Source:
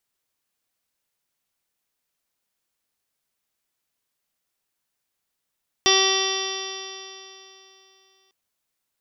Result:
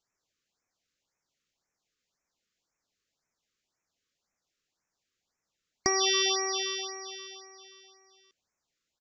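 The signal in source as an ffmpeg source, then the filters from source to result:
-f lavfi -i "aevalsrc='0.0891*pow(10,-3*t/3.02)*sin(2*PI*383.11*t)+0.0501*pow(10,-3*t/3.02)*sin(2*PI*766.84*t)+0.0562*pow(10,-3*t/3.02)*sin(2*PI*1151.84*t)+0.00944*pow(10,-3*t/3.02)*sin(2*PI*1538.73*t)+0.0531*pow(10,-3*t/3.02)*sin(2*PI*1928.12*t)+0.0188*pow(10,-3*t/3.02)*sin(2*PI*2320.64*t)+0.0531*pow(10,-3*t/3.02)*sin(2*PI*2716.89*t)+0.0596*pow(10,-3*t/3.02)*sin(2*PI*3117.46*t)+0.112*pow(10,-3*t/3.02)*sin(2*PI*3522.95*t)+0.0178*pow(10,-3*t/3.02)*sin(2*PI*3933.92*t)+0.0224*pow(10,-3*t/3.02)*sin(2*PI*4350.93*t)+0.0631*pow(10,-3*t/3.02)*sin(2*PI*4774.53*t)+0.0282*pow(10,-3*t/3.02)*sin(2*PI*5205.26*t)+0.0944*pow(10,-3*t/3.02)*sin(2*PI*5643.62*t)':duration=2.45:sample_rate=44100"
-af "acompressor=threshold=-21dB:ratio=6,aresample=16000,aresample=44100,afftfilt=real='re*(1-between(b*sr/1024,750*pow(3800/750,0.5+0.5*sin(2*PI*1.9*pts/sr))/1.41,750*pow(3800/750,0.5+0.5*sin(2*PI*1.9*pts/sr))*1.41))':imag='im*(1-between(b*sr/1024,750*pow(3800/750,0.5+0.5*sin(2*PI*1.9*pts/sr))/1.41,750*pow(3800/750,0.5+0.5*sin(2*PI*1.9*pts/sr))*1.41))':win_size=1024:overlap=0.75"

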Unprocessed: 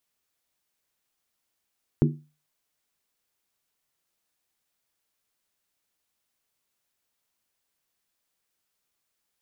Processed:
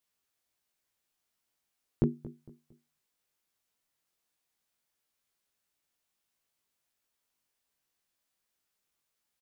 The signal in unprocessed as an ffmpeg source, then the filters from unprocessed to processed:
-f lavfi -i "aevalsrc='0.178*pow(10,-3*t/0.33)*sin(2*PI*150*t)+0.126*pow(10,-3*t/0.261)*sin(2*PI*239.1*t)+0.0891*pow(10,-3*t/0.226)*sin(2*PI*320.4*t)+0.0631*pow(10,-3*t/0.218)*sin(2*PI*344.4*t)+0.0447*pow(10,-3*t/0.203)*sin(2*PI*397.9*t)':duration=0.63:sample_rate=44100"
-filter_complex "[0:a]flanger=delay=17:depth=3.6:speed=1.4,asplit=2[link_01][link_02];[link_02]adelay=228,lowpass=frequency=2000:poles=1,volume=-17dB,asplit=2[link_03][link_04];[link_04]adelay=228,lowpass=frequency=2000:poles=1,volume=0.35,asplit=2[link_05][link_06];[link_06]adelay=228,lowpass=frequency=2000:poles=1,volume=0.35[link_07];[link_01][link_03][link_05][link_07]amix=inputs=4:normalize=0"

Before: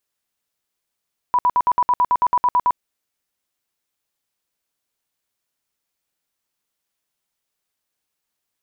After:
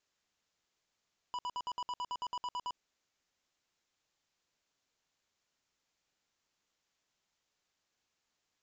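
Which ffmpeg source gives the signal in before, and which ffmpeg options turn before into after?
-f lavfi -i "aevalsrc='0.237*sin(2*PI*985*mod(t,0.11))*lt(mod(t,0.11),47/985)':duration=1.43:sample_rate=44100"
-af "alimiter=limit=-23.5dB:level=0:latency=1:release=35,aresample=16000,asoftclip=type=tanh:threshold=-36.5dB,aresample=44100"

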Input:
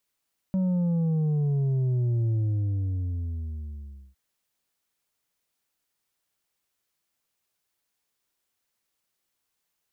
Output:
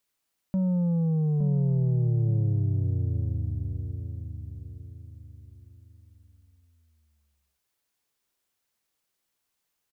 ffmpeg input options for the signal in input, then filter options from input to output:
-f lavfi -i "aevalsrc='0.075*clip((3.61-t)/1.84,0,1)*tanh(1.78*sin(2*PI*190*3.61/log(65/190)*(exp(log(65/190)*t/3.61)-1)))/tanh(1.78)':duration=3.61:sample_rate=44100"
-filter_complex "[0:a]asplit=2[link_01][link_02];[link_02]adelay=864,lowpass=frequency=880:poles=1,volume=-6.5dB,asplit=2[link_03][link_04];[link_04]adelay=864,lowpass=frequency=880:poles=1,volume=0.38,asplit=2[link_05][link_06];[link_06]adelay=864,lowpass=frequency=880:poles=1,volume=0.38,asplit=2[link_07][link_08];[link_08]adelay=864,lowpass=frequency=880:poles=1,volume=0.38[link_09];[link_03][link_05][link_07][link_09]amix=inputs=4:normalize=0[link_10];[link_01][link_10]amix=inputs=2:normalize=0"

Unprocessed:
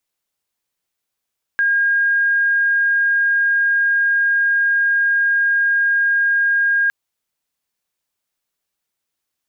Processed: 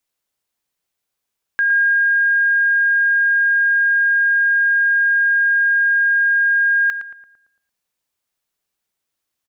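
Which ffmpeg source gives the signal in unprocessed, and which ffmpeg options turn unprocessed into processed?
-f lavfi -i "sine=frequency=1620:duration=5.31:sample_rate=44100,volume=5.06dB"
-filter_complex "[0:a]asplit=2[link_01][link_02];[link_02]adelay=113,lowpass=frequency=1500:poles=1,volume=-7.5dB,asplit=2[link_03][link_04];[link_04]adelay=113,lowpass=frequency=1500:poles=1,volume=0.54,asplit=2[link_05][link_06];[link_06]adelay=113,lowpass=frequency=1500:poles=1,volume=0.54,asplit=2[link_07][link_08];[link_08]adelay=113,lowpass=frequency=1500:poles=1,volume=0.54,asplit=2[link_09][link_10];[link_10]adelay=113,lowpass=frequency=1500:poles=1,volume=0.54,asplit=2[link_11][link_12];[link_12]adelay=113,lowpass=frequency=1500:poles=1,volume=0.54,asplit=2[link_13][link_14];[link_14]adelay=113,lowpass=frequency=1500:poles=1,volume=0.54[link_15];[link_01][link_03][link_05][link_07][link_09][link_11][link_13][link_15]amix=inputs=8:normalize=0"

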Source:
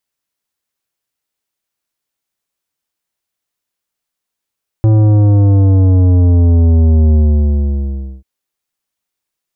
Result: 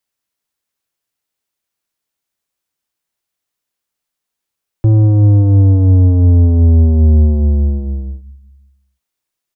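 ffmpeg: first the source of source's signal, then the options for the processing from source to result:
-f lavfi -i "aevalsrc='0.447*clip((3.39-t)/1.09,0,1)*tanh(3.76*sin(2*PI*110*3.39/log(65/110)*(exp(log(65/110)*t/3.39)-1)))/tanh(3.76)':duration=3.39:sample_rate=44100"
-filter_complex "[0:a]acrossover=split=190|450[link_01][link_02][link_03];[link_01]aecho=1:1:192|384|576|768:0.2|0.0898|0.0404|0.0182[link_04];[link_03]alimiter=level_in=4.5dB:limit=-24dB:level=0:latency=1,volume=-4.5dB[link_05];[link_04][link_02][link_05]amix=inputs=3:normalize=0"

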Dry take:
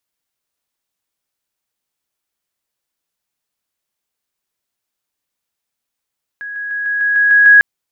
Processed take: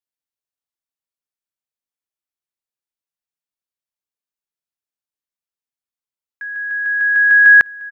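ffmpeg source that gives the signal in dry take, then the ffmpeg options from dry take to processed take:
-f lavfi -i "aevalsrc='pow(10,(-24+3*floor(t/0.15))/20)*sin(2*PI*1660*t)':duration=1.2:sample_rate=44100"
-af "aecho=1:1:351|702|1053|1404:0.0794|0.0469|0.0277|0.0163,agate=range=-15dB:threshold=-42dB:ratio=16:detection=peak"

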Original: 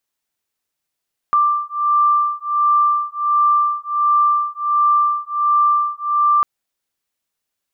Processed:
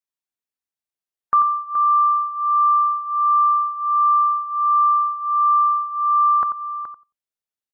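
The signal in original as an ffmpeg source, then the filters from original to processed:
-f lavfi -i "aevalsrc='0.15*(sin(2*PI*1180*t)+sin(2*PI*1181.4*t))':duration=5.1:sample_rate=44100"
-filter_complex "[0:a]asplit=2[link_01][link_02];[link_02]adelay=90,lowpass=frequency=810:poles=1,volume=-4dB,asplit=2[link_03][link_04];[link_04]adelay=90,lowpass=frequency=810:poles=1,volume=0.24,asplit=2[link_05][link_06];[link_06]adelay=90,lowpass=frequency=810:poles=1,volume=0.24[link_07];[link_03][link_05][link_07]amix=inputs=3:normalize=0[link_08];[link_01][link_08]amix=inputs=2:normalize=0,afftdn=noise_reduction=15:noise_floor=-35,asplit=2[link_09][link_10];[link_10]aecho=0:1:423:0.266[link_11];[link_09][link_11]amix=inputs=2:normalize=0"

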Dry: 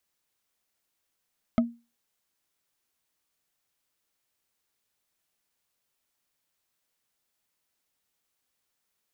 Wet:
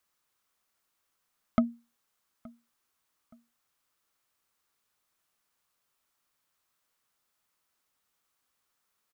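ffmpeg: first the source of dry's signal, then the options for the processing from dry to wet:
-f lavfi -i "aevalsrc='0.168*pow(10,-3*t/0.29)*sin(2*PI*235*t)+0.0891*pow(10,-3*t/0.086)*sin(2*PI*647.9*t)+0.0473*pow(10,-3*t/0.038)*sin(2*PI*1269.9*t)+0.0251*pow(10,-3*t/0.021)*sin(2*PI*2099.3*t)+0.0133*pow(10,-3*t/0.013)*sin(2*PI*3134.9*t)':duration=0.45:sample_rate=44100"
-filter_complex "[0:a]equalizer=frequency=1200:width_type=o:width=0.7:gain=7.5,asplit=2[link_01][link_02];[link_02]adelay=872,lowpass=frequency=2000:poles=1,volume=-23.5dB,asplit=2[link_03][link_04];[link_04]adelay=872,lowpass=frequency=2000:poles=1,volume=0.36[link_05];[link_01][link_03][link_05]amix=inputs=3:normalize=0"

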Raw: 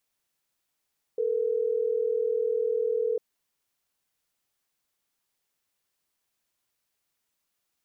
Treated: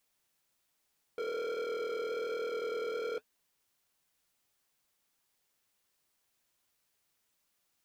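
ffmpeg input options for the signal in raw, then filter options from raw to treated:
-f lavfi -i "aevalsrc='0.0473*(sin(2*PI*440*t)+sin(2*PI*480*t))*clip(min(mod(t,6),2-mod(t,6))/0.005,0,1)':duration=3.12:sample_rate=44100"
-af "acontrast=56,asoftclip=type=hard:threshold=-31dB,flanger=delay=3.2:depth=8.4:regen=-62:speed=1.2:shape=triangular"

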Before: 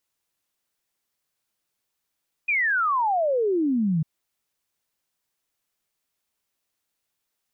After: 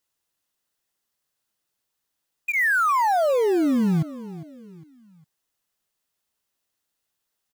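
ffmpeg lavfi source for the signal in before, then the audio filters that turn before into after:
-f lavfi -i "aevalsrc='0.106*clip(min(t,1.55-t)/0.01,0,1)*sin(2*PI*2500*1.55/log(150/2500)*(exp(log(150/2500)*t/1.55)-1))':duration=1.55:sample_rate=44100"
-filter_complex "[0:a]bandreject=frequency=2300:width=12,asplit=2[link_01][link_02];[link_02]acrusher=bits=4:mix=0:aa=0.000001,volume=-10dB[link_03];[link_01][link_03]amix=inputs=2:normalize=0,aecho=1:1:405|810|1215:0.158|0.0618|0.0241"

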